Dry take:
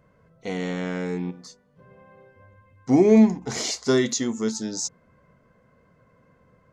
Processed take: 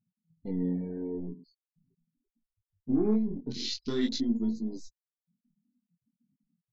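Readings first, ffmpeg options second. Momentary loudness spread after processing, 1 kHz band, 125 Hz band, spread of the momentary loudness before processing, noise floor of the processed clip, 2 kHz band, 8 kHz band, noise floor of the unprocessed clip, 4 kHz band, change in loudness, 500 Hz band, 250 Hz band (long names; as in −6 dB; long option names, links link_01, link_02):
17 LU, −17.0 dB, −8.0 dB, 16 LU, below −85 dBFS, −16.5 dB, −19.0 dB, −62 dBFS, −5.5 dB, −8.5 dB, −13.0 dB, −8.0 dB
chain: -af "aeval=exprs='if(lt(val(0),0),0.447*val(0),val(0))':channel_layout=same,acompressor=mode=upward:threshold=-37dB:ratio=2.5,equalizer=frequency=100:width_type=o:width=0.67:gain=-5,equalizer=frequency=250:width_type=o:width=0.67:gain=8,equalizer=frequency=630:width_type=o:width=0.67:gain=-12,equalizer=frequency=4000:width_type=o:width=0.67:gain=11,afftfilt=real='re*gte(hypot(re,im),0.0316)':imag='im*gte(hypot(re,im),0.0316)':win_size=1024:overlap=0.75,afwtdn=0.0282,aemphasis=mode=reproduction:type=50kf,alimiter=limit=-17dB:level=0:latency=1:release=65,flanger=delay=17:depth=7.8:speed=0.44"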